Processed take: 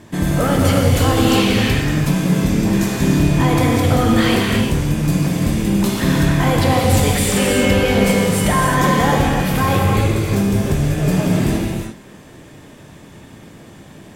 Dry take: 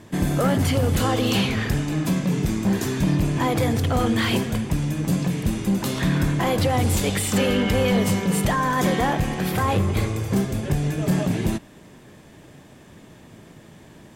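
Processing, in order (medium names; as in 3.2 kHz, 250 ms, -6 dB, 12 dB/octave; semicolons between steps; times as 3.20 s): gated-style reverb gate 380 ms flat, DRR -2 dB; trim +2.5 dB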